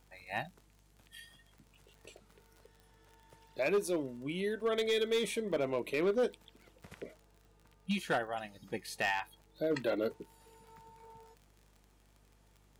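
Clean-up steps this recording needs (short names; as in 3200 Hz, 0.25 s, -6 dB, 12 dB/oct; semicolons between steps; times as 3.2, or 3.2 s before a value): clip repair -25 dBFS; de-click; de-hum 49.8 Hz, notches 5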